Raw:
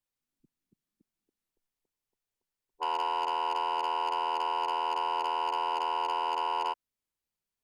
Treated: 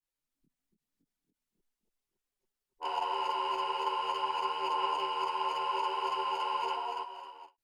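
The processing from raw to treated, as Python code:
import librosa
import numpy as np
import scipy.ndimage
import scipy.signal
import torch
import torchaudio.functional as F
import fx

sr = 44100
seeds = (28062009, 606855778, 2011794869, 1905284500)

y = fx.echo_multitap(x, sr, ms=(288, 553, 802), db=(-4.5, -13.0, -17.0))
y = fx.chorus_voices(y, sr, voices=6, hz=0.86, base_ms=25, depth_ms=3.8, mix_pct=70)
y = fx.end_taper(y, sr, db_per_s=300.0)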